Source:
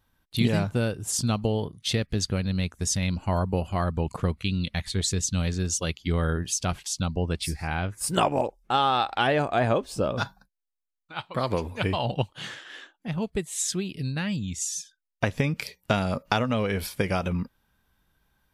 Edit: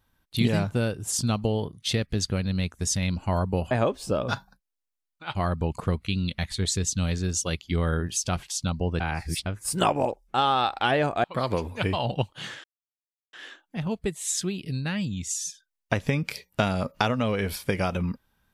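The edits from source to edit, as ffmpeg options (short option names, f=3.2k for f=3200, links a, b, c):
-filter_complex "[0:a]asplit=7[a][b][c][d][e][f][g];[a]atrim=end=3.712[h];[b]atrim=start=9.598:end=11.242[i];[c]atrim=start=3.708:end=7.362[j];[d]atrim=start=7.358:end=7.822,asetpts=PTS-STARTPTS,areverse[k];[e]atrim=start=7.818:end=9.602[l];[f]atrim=start=11.238:end=12.64,asetpts=PTS-STARTPTS,afade=t=out:st=1.398:d=0.004:c=hsin,apad=pad_dur=0.69[m];[g]atrim=start=12.64,asetpts=PTS-STARTPTS,afade=t=in:d=0.004:c=hsin[n];[h][i]acrossfade=d=0.004:c1=hsin:c2=hsin[o];[o][j]acrossfade=d=0.004:c1=hsin:c2=hsin[p];[p][k]acrossfade=d=0.004:c1=hsin:c2=hsin[q];[q][l]acrossfade=d=0.004:c1=hsin:c2=hsin[r];[m][n]concat=n=2:v=0:a=1[s];[r][s]acrossfade=d=0.004:c1=hsin:c2=hsin"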